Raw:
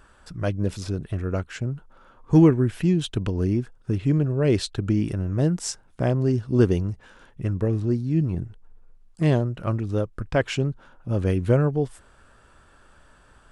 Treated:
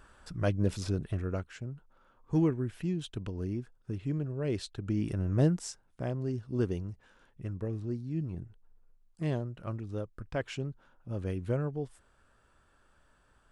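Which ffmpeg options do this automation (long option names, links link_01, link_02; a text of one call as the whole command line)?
ffmpeg -i in.wav -af "volume=5.5dB,afade=type=out:start_time=0.98:duration=0.58:silence=0.375837,afade=type=in:start_time=4.8:duration=0.62:silence=0.354813,afade=type=out:start_time=5.42:duration=0.27:silence=0.354813" out.wav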